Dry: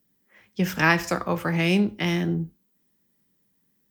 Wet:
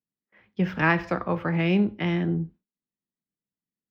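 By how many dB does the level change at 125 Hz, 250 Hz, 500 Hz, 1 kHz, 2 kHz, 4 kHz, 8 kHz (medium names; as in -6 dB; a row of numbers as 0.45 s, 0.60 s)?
-0.5 dB, -0.5 dB, -1.0 dB, -1.5 dB, -3.0 dB, -7.0 dB, under -20 dB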